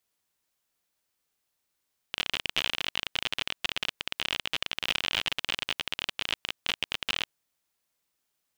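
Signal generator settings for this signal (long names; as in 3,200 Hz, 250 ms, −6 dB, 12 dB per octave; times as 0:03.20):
Geiger counter clicks 41 per second −11.5 dBFS 5.18 s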